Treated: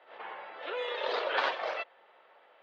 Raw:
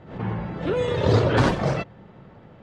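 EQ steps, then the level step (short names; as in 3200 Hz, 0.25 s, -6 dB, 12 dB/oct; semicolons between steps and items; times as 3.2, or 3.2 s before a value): HPF 540 Hz 24 dB/oct; LPF 3700 Hz 24 dB/oct; high shelf 2100 Hz +9.5 dB; -7.5 dB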